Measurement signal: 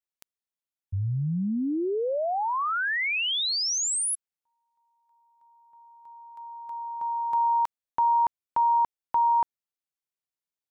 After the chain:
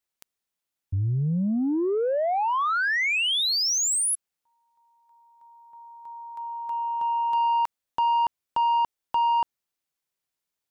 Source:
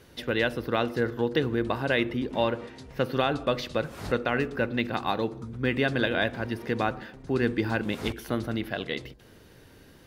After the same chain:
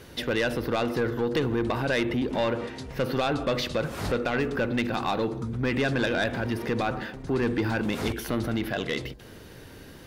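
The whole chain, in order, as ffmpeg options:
ffmpeg -i in.wav -filter_complex "[0:a]asplit=2[link_01][link_02];[link_02]acompressor=threshold=-32dB:ratio=6:attack=3.7:release=43:knee=1,volume=2dB[link_03];[link_01][link_03]amix=inputs=2:normalize=0,asoftclip=type=tanh:threshold=-18.5dB" out.wav

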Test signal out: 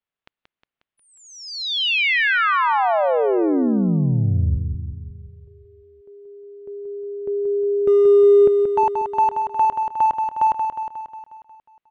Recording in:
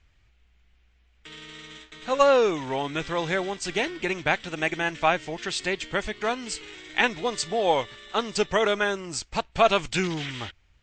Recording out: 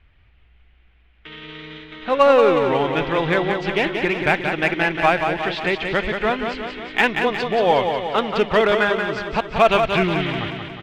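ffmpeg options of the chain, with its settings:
ffmpeg -i in.wav -filter_complex "[0:a]lowpass=frequency=3300:width=0.5412,lowpass=frequency=3300:width=1.3066,asplit=2[link_01][link_02];[link_02]asoftclip=type=hard:threshold=-23dB,volume=-5.5dB[link_03];[link_01][link_03]amix=inputs=2:normalize=0,aecho=1:1:180|360|540|720|900|1080|1260|1440:0.501|0.291|0.169|0.0978|0.0567|0.0329|0.0191|0.0111,volume=3dB" out.wav

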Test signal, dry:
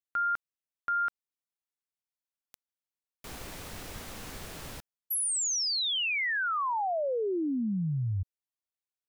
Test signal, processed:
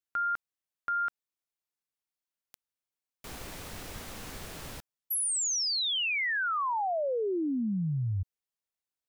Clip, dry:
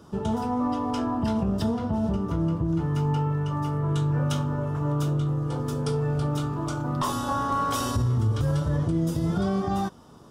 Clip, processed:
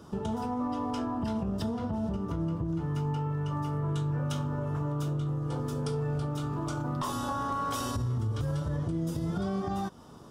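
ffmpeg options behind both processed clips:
ffmpeg -i in.wav -af "acompressor=threshold=-27dB:ratio=4:attack=2.3:release=358:knee=1:detection=rms" out.wav

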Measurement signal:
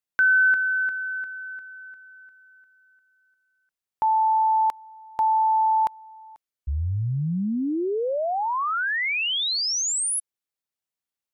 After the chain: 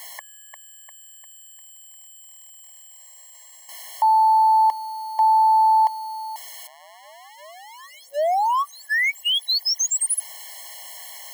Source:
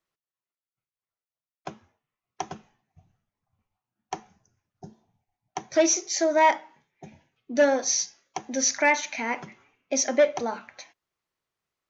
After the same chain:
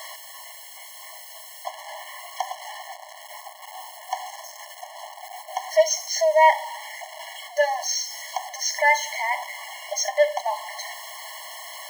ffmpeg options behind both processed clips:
ffmpeg -i in.wav -af "aeval=exprs='val(0)+0.5*0.0282*sgn(val(0))':channel_layout=same,afftfilt=real='re*eq(mod(floor(b*sr/1024/560),2),1)':imag='im*eq(mod(floor(b*sr/1024/560),2),1)':win_size=1024:overlap=0.75,volume=3.5dB" out.wav

